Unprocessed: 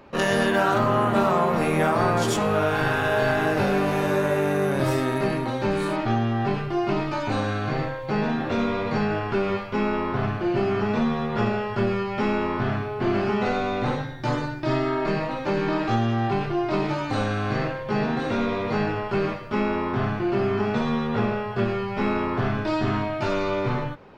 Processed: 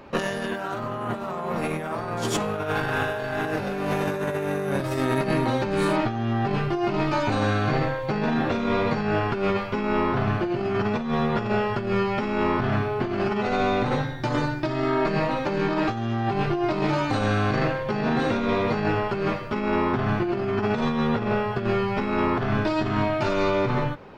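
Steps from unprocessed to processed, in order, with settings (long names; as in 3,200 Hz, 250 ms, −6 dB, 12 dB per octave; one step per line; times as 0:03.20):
compressor whose output falls as the input rises −25 dBFS, ratio −0.5
level +1.5 dB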